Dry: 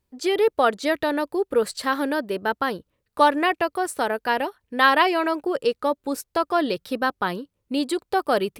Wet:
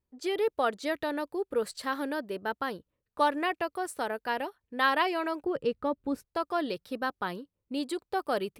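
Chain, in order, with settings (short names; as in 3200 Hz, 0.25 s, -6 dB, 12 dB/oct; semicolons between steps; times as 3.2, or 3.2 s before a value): 5.44–6.25 tone controls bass +13 dB, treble -10 dB; mismatched tape noise reduction decoder only; gain -8.5 dB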